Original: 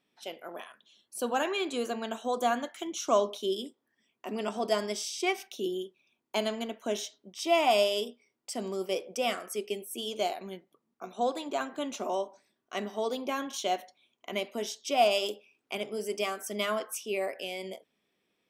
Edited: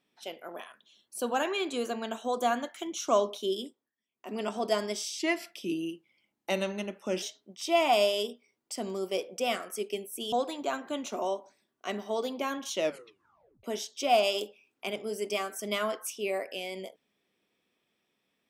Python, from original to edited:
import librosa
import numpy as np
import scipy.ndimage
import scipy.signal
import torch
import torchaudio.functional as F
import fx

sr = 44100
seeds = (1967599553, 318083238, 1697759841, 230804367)

y = fx.edit(x, sr, fx.fade_down_up(start_s=3.63, length_s=0.76, db=-17.0, fade_s=0.29),
    fx.speed_span(start_s=5.19, length_s=1.81, speed=0.89),
    fx.cut(start_s=10.1, length_s=1.1),
    fx.tape_stop(start_s=13.6, length_s=0.91), tone=tone)